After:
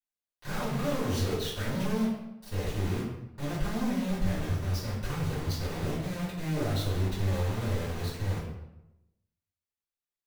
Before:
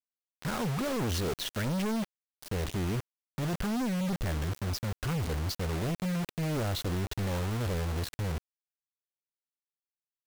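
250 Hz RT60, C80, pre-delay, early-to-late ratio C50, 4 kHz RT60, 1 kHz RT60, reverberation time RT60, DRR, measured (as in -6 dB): 1.0 s, 5.5 dB, 3 ms, 2.5 dB, 0.65 s, 0.90 s, 0.90 s, -12.5 dB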